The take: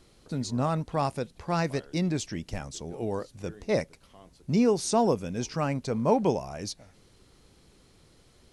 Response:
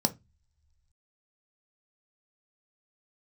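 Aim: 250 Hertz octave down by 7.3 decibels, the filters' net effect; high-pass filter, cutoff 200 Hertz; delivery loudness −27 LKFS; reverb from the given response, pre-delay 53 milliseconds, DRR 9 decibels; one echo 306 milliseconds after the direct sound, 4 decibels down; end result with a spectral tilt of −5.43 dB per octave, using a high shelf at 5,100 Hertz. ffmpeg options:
-filter_complex "[0:a]highpass=200,equalizer=frequency=250:width_type=o:gain=-6.5,highshelf=frequency=5100:gain=-8.5,aecho=1:1:306:0.631,asplit=2[link_01][link_02];[1:a]atrim=start_sample=2205,adelay=53[link_03];[link_02][link_03]afir=irnorm=-1:irlink=0,volume=-16.5dB[link_04];[link_01][link_04]amix=inputs=2:normalize=0,volume=2.5dB"

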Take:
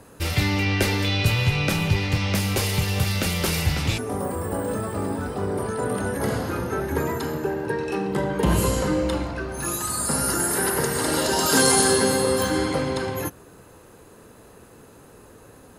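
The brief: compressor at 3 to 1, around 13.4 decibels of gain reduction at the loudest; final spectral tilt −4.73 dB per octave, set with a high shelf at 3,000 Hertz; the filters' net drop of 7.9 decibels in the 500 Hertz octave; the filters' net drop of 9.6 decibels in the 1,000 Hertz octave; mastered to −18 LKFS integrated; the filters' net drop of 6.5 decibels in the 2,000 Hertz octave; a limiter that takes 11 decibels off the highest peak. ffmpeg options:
ffmpeg -i in.wav -af "equalizer=frequency=500:width_type=o:gain=-8,equalizer=frequency=1000:width_type=o:gain=-8.5,equalizer=frequency=2000:width_type=o:gain=-3.5,highshelf=frequency=3000:gain=-4.5,acompressor=threshold=-36dB:ratio=3,volume=24dB,alimiter=limit=-9.5dB:level=0:latency=1" out.wav

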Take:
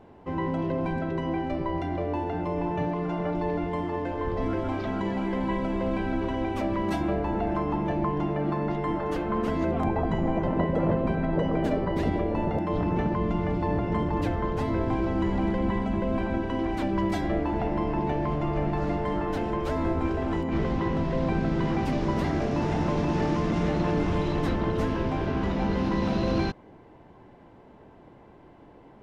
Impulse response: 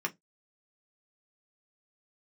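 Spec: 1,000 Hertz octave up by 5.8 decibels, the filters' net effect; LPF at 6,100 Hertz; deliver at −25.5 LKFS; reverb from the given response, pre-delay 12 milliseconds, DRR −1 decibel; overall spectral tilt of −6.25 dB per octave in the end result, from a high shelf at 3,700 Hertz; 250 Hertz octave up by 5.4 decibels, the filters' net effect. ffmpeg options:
-filter_complex "[0:a]lowpass=6100,equalizer=frequency=250:width_type=o:gain=7,equalizer=frequency=1000:width_type=o:gain=7,highshelf=frequency=3700:gain=-7.5,asplit=2[link_01][link_02];[1:a]atrim=start_sample=2205,adelay=12[link_03];[link_02][link_03]afir=irnorm=-1:irlink=0,volume=-4dB[link_04];[link_01][link_04]amix=inputs=2:normalize=0,volume=-5.5dB"

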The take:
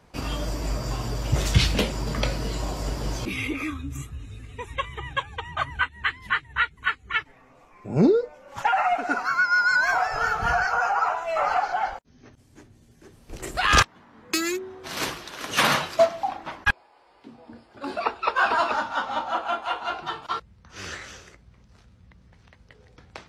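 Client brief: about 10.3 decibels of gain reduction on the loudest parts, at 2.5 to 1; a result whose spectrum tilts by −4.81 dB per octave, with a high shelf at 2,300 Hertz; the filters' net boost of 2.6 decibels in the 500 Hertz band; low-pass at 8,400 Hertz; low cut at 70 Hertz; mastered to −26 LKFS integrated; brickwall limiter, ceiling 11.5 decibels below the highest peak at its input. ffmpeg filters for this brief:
ffmpeg -i in.wav -af "highpass=70,lowpass=8400,equalizer=frequency=500:width_type=o:gain=4,highshelf=frequency=2300:gain=-4,acompressor=threshold=-28dB:ratio=2.5,volume=9dB,alimiter=limit=-16dB:level=0:latency=1" out.wav

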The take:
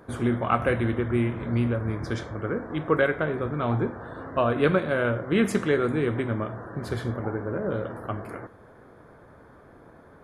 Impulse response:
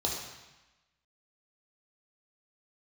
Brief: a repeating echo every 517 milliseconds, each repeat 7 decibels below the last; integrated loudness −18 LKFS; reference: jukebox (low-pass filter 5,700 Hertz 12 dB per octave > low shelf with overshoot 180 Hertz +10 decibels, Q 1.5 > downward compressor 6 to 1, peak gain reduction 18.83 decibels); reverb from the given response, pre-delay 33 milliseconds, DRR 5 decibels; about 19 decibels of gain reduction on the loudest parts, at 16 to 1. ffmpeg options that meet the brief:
-filter_complex "[0:a]acompressor=threshold=-36dB:ratio=16,aecho=1:1:517|1034|1551|2068|2585:0.447|0.201|0.0905|0.0407|0.0183,asplit=2[link_01][link_02];[1:a]atrim=start_sample=2205,adelay=33[link_03];[link_02][link_03]afir=irnorm=-1:irlink=0,volume=-11.5dB[link_04];[link_01][link_04]amix=inputs=2:normalize=0,lowpass=5700,lowshelf=frequency=180:width_type=q:width=1.5:gain=10,acompressor=threshold=-43dB:ratio=6,volume=28.5dB"

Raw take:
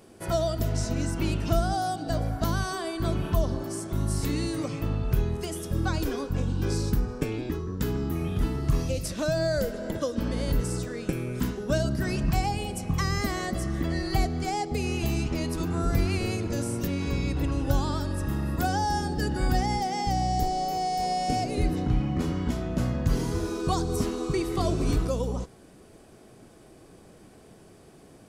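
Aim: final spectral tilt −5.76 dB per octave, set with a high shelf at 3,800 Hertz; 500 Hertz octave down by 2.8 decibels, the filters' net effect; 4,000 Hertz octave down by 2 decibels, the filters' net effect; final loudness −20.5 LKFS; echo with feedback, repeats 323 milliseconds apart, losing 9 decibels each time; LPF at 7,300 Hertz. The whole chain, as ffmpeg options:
ffmpeg -i in.wav -af "lowpass=7300,equalizer=frequency=500:width_type=o:gain=-4,highshelf=frequency=3800:gain=8,equalizer=frequency=4000:width_type=o:gain=-8,aecho=1:1:323|646|969|1292:0.355|0.124|0.0435|0.0152,volume=8dB" out.wav

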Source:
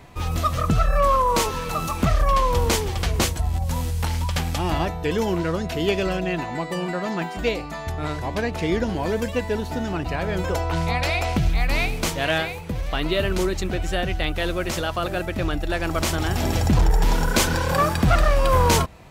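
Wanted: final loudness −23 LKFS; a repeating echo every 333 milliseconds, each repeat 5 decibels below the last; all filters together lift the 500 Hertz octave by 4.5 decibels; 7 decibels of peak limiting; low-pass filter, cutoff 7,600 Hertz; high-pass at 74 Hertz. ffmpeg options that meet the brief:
ffmpeg -i in.wav -af "highpass=74,lowpass=7600,equalizer=frequency=500:width_type=o:gain=5.5,alimiter=limit=-12.5dB:level=0:latency=1,aecho=1:1:333|666|999|1332|1665|1998|2331:0.562|0.315|0.176|0.0988|0.0553|0.031|0.0173,volume=-1dB" out.wav

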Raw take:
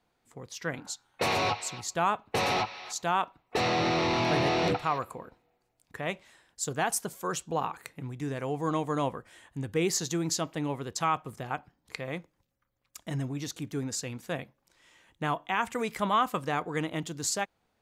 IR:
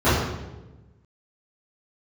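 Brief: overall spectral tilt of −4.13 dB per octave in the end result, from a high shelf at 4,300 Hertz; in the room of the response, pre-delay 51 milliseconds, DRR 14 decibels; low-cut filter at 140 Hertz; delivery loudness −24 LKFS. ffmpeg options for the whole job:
-filter_complex "[0:a]highpass=140,highshelf=frequency=4300:gain=-3.5,asplit=2[link_01][link_02];[1:a]atrim=start_sample=2205,adelay=51[link_03];[link_02][link_03]afir=irnorm=-1:irlink=0,volume=-36.5dB[link_04];[link_01][link_04]amix=inputs=2:normalize=0,volume=7dB"

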